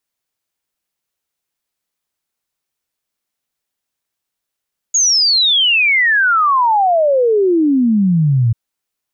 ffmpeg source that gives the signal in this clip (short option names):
-f lavfi -i "aevalsrc='0.335*clip(min(t,3.59-t)/0.01,0,1)*sin(2*PI*6800*3.59/log(110/6800)*(exp(log(110/6800)*t/3.59)-1))':d=3.59:s=44100"